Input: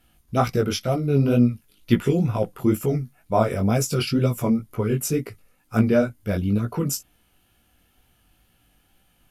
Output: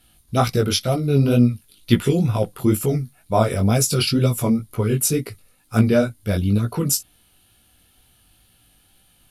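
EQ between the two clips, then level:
graphic EQ with 15 bands 100 Hz +4 dB, 4,000 Hz +9 dB, 10,000 Hz +10 dB
+1.5 dB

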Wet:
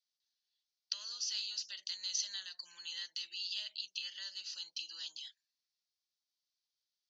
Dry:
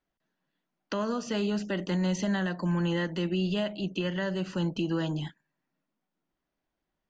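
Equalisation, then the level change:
flat-topped band-pass 5,000 Hz, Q 2.2
high-frequency loss of the air 55 metres
+11.5 dB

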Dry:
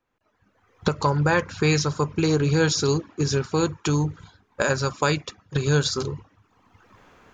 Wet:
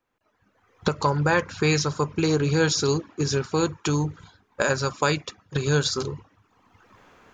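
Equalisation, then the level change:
low-shelf EQ 160 Hz −4 dB
0.0 dB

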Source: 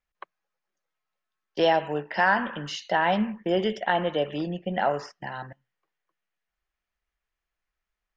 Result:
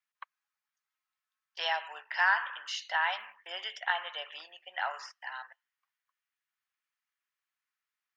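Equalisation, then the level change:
high-pass filter 990 Hz 24 dB per octave
−2.0 dB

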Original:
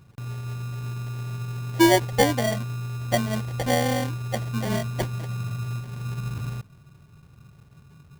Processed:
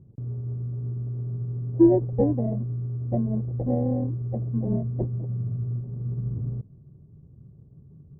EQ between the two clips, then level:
transistor ladder low-pass 530 Hz, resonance 20%
+6.0 dB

